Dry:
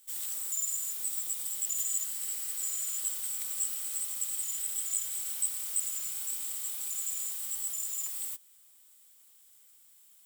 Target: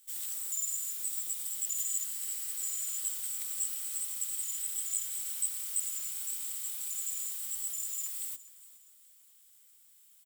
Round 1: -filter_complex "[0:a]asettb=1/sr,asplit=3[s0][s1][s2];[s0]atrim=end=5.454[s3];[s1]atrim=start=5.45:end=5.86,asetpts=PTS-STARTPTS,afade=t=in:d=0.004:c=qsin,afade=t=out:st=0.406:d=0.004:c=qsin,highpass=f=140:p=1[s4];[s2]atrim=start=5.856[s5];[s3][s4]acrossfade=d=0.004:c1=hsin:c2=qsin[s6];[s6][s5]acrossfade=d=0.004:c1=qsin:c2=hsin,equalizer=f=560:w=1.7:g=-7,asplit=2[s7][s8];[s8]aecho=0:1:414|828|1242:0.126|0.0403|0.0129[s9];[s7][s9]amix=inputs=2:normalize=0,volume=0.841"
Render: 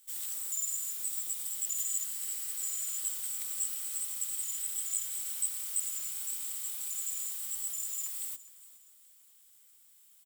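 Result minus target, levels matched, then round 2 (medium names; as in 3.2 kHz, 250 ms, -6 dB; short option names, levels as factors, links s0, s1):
500 Hz band +5.5 dB
-filter_complex "[0:a]asettb=1/sr,asplit=3[s0][s1][s2];[s0]atrim=end=5.454[s3];[s1]atrim=start=5.45:end=5.86,asetpts=PTS-STARTPTS,afade=t=in:d=0.004:c=qsin,afade=t=out:st=0.406:d=0.004:c=qsin,highpass=f=140:p=1[s4];[s2]atrim=start=5.856[s5];[s3][s4]acrossfade=d=0.004:c1=hsin:c2=qsin[s6];[s6][s5]acrossfade=d=0.004:c1=qsin:c2=hsin,equalizer=f=560:w=1.7:g=-16.5,asplit=2[s7][s8];[s8]aecho=0:1:414|828|1242:0.126|0.0403|0.0129[s9];[s7][s9]amix=inputs=2:normalize=0,volume=0.841"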